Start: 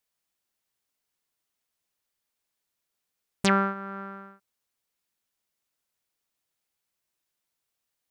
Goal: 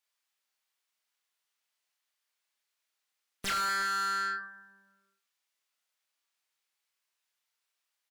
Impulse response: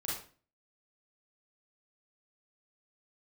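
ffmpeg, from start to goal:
-filter_complex "[0:a]bandreject=f=352.1:t=h:w=4,bandreject=f=704.2:t=h:w=4,bandreject=f=1056.3:t=h:w=4,bandreject=f=1408.4:t=h:w=4,bandreject=f=1760.5:t=h:w=4,bandreject=f=2112.6:t=h:w=4,bandreject=f=2464.7:t=h:w=4,bandreject=f=2816.8:t=h:w=4,bandreject=f=3168.9:t=h:w=4,bandreject=f=3521:t=h:w=4,bandreject=f=3873.1:t=h:w=4,bandreject=f=4225.2:t=h:w=4,bandreject=f=4577.3:t=h:w=4,bandreject=f=4929.4:t=h:w=4,bandreject=f=5281.5:t=h:w=4,bandreject=f=5633.6:t=h:w=4,bandreject=f=5985.7:t=h:w=4,bandreject=f=6337.8:t=h:w=4,bandreject=f=6689.9:t=h:w=4,bandreject=f=7042:t=h:w=4,bandreject=f=7394.1:t=h:w=4,bandreject=f=7746.2:t=h:w=4,bandreject=f=8098.3:t=h:w=4,bandreject=f=8450.4:t=h:w=4,bandreject=f=8802.5:t=h:w=4,bandreject=f=9154.6:t=h:w=4,bandreject=f=9506.7:t=h:w=4,bandreject=f=9858.8:t=h:w=4,bandreject=f=10210.9:t=h:w=4,bandreject=f=10563:t=h:w=4,bandreject=f=10915.1:t=h:w=4,acrossover=split=1300[s0][s1];[s0]alimiter=level_in=1.58:limit=0.0631:level=0:latency=1,volume=0.631[s2];[s1]volume=25.1,asoftclip=hard,volume=0.0398[s3];[s2][s3]amix=inputs=2:normalize=0,tiltshelf=f=680:g=-5,asplit=2[s4][s5];[s5]adelay=30,volume=0.708[s6];[s4][s6]amix=inputs=2:normalize=0,asplit=2[s7][s8];[1:a]atrim=start_sample=2205[s9];[s8][s9]afir=irnorm=-1:irlink=0,volume=0.266[s10];[s7][s10]amix=inputs=2:normalize=0,afftdn=nr=19:nf=-51,asplit=2[s11][s12];[s12]adelay=162,lowpass=f=1600:p=1,volume=0.126,asplit=2[s13][s14];[s14]adelay=162,lowpass=f=1600:p=1,volume=0.54,asplit=2[s15][s16];[s16]adelay=162,lowpass=f=1600:p=1,volume=0.54,asplit=2[s17][s18];[s18]adelay=162,lowpass=f=1600:p=1,volume=0.54,asplit=2[s19][s20];[s20]adelay=162,lowpass=f=1600:p=1,volume=0.54[s21];[s11][s13][s15][s17][s19][s21]amix=inputs=6:normalize=0,asplit=2[s22][s23];[s23]highpass=f=720:p=1,volume=22.4,asoftclip=type=tanh:threshold=0.237[s24];[s22][s24]amix=inputs=2:normalize=0,lowpass=f=4200:p=1,volume=0.501,adynamicequalizer=threshold=0.02:dfrequency=1800:dqfactor=2.4:tfrequency=1800:tqfactor=2.4:attack=5:release=100:ratio=0.375:range=1.5:mode=boostabove:tftype=bell,asoftclip=type=tanh:threshold=0.0631,volume=0.531"

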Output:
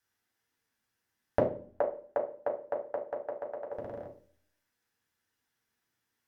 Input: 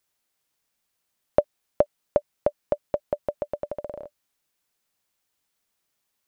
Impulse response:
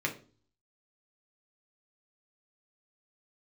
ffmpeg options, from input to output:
-filter_complex "[0:a]asettb=1/sr,asplit=3[s0][s1][s2];[s0]atrim=end=1.394[s3];[s1]atrim=start=1.39:end=3.72,asetpts=PTS-STARTPTS,afade=t=in:d=0.004:c=qsin,afade=t=out:st=2.326:d=0.004:c=qsin,acrossover=split=430 2000:gain=0.0708 1 0.2[s4][s5][s6];[s4][s5][s6]amix=inputs=3:normalize=0[s7];[s2]atrim=start=3.716[s8];[s3][s7]acrossfade=d=0.004:c1=hsin:c2=qsin[s9];[s9][s8]acrossfade=d=0.004:c1=qsin:c2=hsin[s10];[1:a]atrim=start_sample=2205,asetrate=35721,aresample=44100[s11];[s10][s11]afir=irnorm=-1:irlink=0,volume=0.422"

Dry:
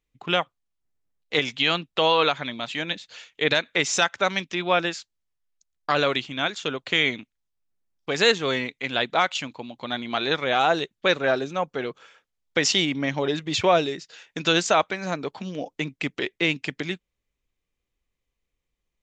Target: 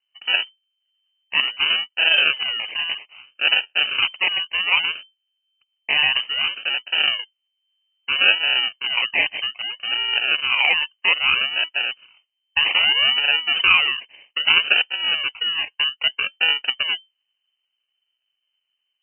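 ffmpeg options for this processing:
-af "equalizer=f=125:t=o:w=1:g=11,equalizer=f=250:t=o:w=1:g=7,equalizer=f=2000:t=o:w=1:g=-3,acrusher=samples=35:mix=1:aa=0.000001:lfo=1:lforange=21:lforate=0.62,lowpass=f=2600:t=q:w=0.5098,lowpass=f=2600:t=q:w=0.6013,lowpass=f=2600:t=q:w=0.9,lowpass=f=2600:t=q:w=2.563,afreqshift=-3100,volume=1.19"

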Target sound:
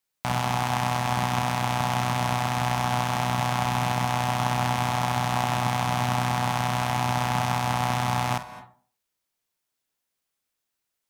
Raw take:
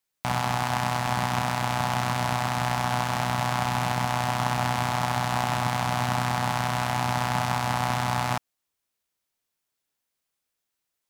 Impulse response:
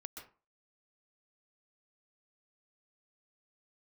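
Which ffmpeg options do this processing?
-filter_complex "[0:a]asplit=2[s0][s1];[1:a]atrim=start_sample=2205,asetrate=33075,aresample=44100,adelay=49[s2];[s1][s2]afir=irnorm=-1:irlink=0,volume=0.422[s3];[s0][s3]amix=inputs=2:normalize=0"

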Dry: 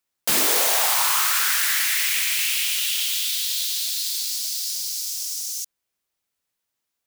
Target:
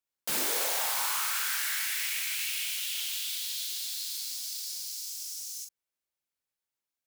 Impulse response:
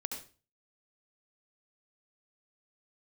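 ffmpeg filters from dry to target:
-filter_complex "[0:a]asettb=1/sr,asplit=3[s0][s1][s2];[s0]atrim=end=2.914[s3];[s1]atrim=start=2.91:end=4.95,asetpts=PTS-STARTPTS,afade=t=in:d=0.004:c=qsin,afade=t=out:st=2.036:d=0.004:c=qsin,equalizer=f=300:t=o:w=2.9:g=8.5[s4];[s2]atrim=start=4.946[s5];[s3][s4]acrossfade=d=0.004:c1=hsin:c2=qsin[s6];[s6][s5]acrossfade=d=0.004:c1=qsin:c2=hsin[s7];[1:a]atrim=start_sample=2205,atrim=end_sample=3528,asetrate=79380,aresample=44100[s8];[s7][s8]afir=irnorm=-1:irlink=0,volume=0.631"

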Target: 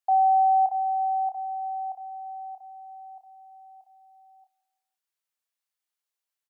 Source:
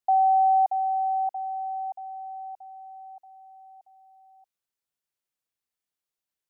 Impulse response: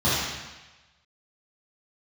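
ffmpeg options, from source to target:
-filter_complex "[0:a]highpass=620,asplit=2[s0][s1];[s1]adelay=29,volume=0.398[s2];[s0][s2]amix=inputs=2:normalize=0,aecho=1:1:169|338|507:0.0891|0.0401|0.018"

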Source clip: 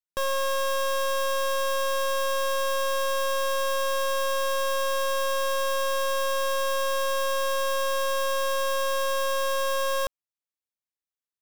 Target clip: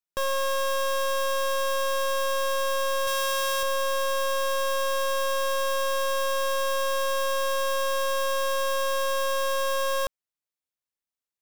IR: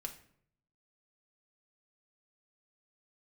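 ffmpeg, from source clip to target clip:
-filter_complex "[0:a]asettb=1/sr,asplit=3[s0][s1][s2];[s0]atrim=end=3.074[s3];[s1]atrim=start=3.07:end=3.63,asetpts=PTS-STARTPTS,afade=t=in:d=0.004:c=qsin,afade=t=out:st=0.556:d=0.004:c=qsin,tiltshelf=f=970:g=-4.5[s4];[s2]atrim=start=3.626[s5];[s3][s4]acrossfade=d=0.004:c1=hsin:c2=qsin[s6];[s6][s5]acrossfade=d=0.004:c1=qsin:c2=hsin"

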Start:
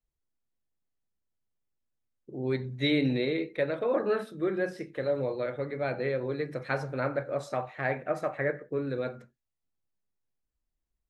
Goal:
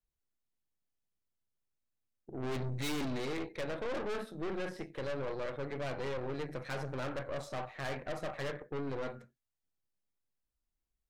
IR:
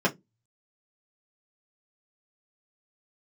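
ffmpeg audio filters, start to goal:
-filter_complex "[0:a]asplit=3[s0][s1][s2];[s0]afade=t=out:st=2.42:d=0.02[s3];[s1]acontrast=87,afade=t=in:st=2.42:d=0.02,afade=t=out:st=3.04:d=0.02[s4];[s2]afade=t=in:st=3.04:d=0.02[s5];[s3][s4][s5]amix=inputs=3:normalize=0,aeval=exprs='(tanh(63.1*val(0)+0.75)-tanh(0.75))/63.1':c=same,volume=1.12"

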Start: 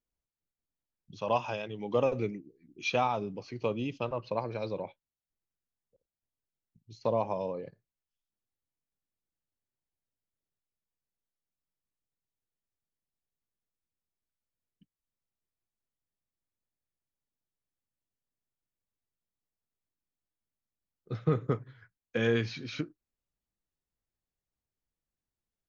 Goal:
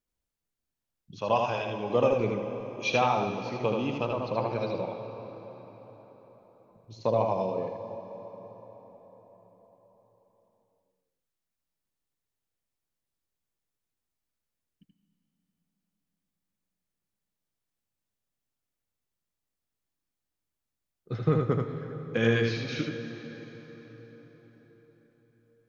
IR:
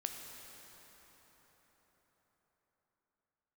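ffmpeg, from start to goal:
-filter_complex "[0:a]asplit=2[s0][s1];[1:a]atrim=start_sample=2205,adelay=79[s2];[s1][s2]afir=irnorm=-1:irlink=0,volume=0.794[s3];[s0][s3]amix=inputs=2:normalize=0,volume=1.33"

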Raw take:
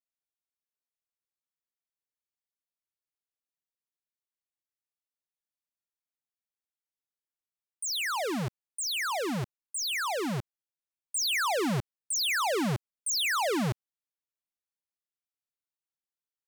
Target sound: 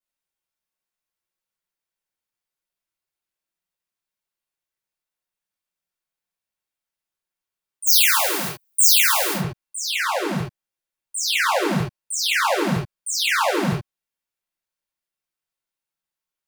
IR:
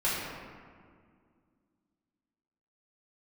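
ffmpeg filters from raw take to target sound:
-filter_complex "[0:a]asplit=3[s0][s1][s2];[s0]afade=t=out:st=7.86:d=0.02[s3];[s1]aemphasis=mode=production:type=riaa,afade=t=in:st=7.86:d=0.02,afade=t=out:st=9.33:d=0.02[s4];[s2]afade=t=in:st=9.33:d=0.02[s5];[s3][s4][s5]amix=inputs=3:normalize=0[s6];[1:a]atrim=start_sample=2205,atrim=end_sample=3969[s7];[s6][s7]afir=irnorm=-1:irlink=0"

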